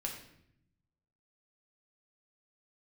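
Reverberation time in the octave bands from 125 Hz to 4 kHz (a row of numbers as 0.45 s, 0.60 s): 1.4 s, 1.2 s, 0.80 s, 0.65 s, 0.70 s, 0.60 s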